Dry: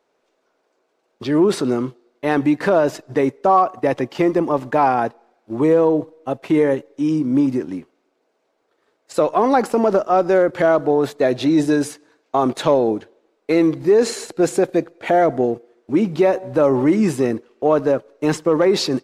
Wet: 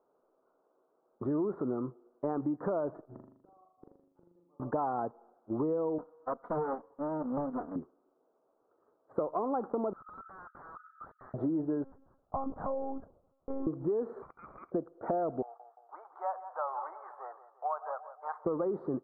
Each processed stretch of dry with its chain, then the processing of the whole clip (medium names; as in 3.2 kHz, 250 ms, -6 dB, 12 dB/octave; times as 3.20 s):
3.05–4.60 s: inharmonic resonator 89 Hz, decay 0.2 s, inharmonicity 0.002 + inverted gate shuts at -29 dBFS, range -40 dB + flutter echo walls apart 6.9 m, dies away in 0.67 s
5.98–7.76 s: comb filter that takes the minimum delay 4.1 ms + tilt EQ +4.5 dB/octave + loudspeaker Doppler distortion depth 0.62 ms
9.93–11.34 s: brick-wall FIR high-pass 1.2 kHz + compression 3:1, threshold -32 dBFS + integer overflow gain 32 dB
11.84–13.67 s: compression 3:1, threshold -22 dBFS + rippled Chebyshev high-pass 190 Hz, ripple 6 dB + monotone LPC vocoder at 8 kHz 270 Hz
14.22–14.72 s: frequency inversion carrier 2.8 kHz + compression 12:1, threshold -20 dBFS
15.42–18.45 s: elliptic high-pass 760 Hz, stop band 70 dB + filtered feedback delay 174 ms, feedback 50%, low-pass 1.8 kHz, level -13.5 dB
whole clip: elliptic low-pass 1.3 kHz, stop band 50 dB; compression 5:1, threshold -26 dBFS; trim -4.5 dB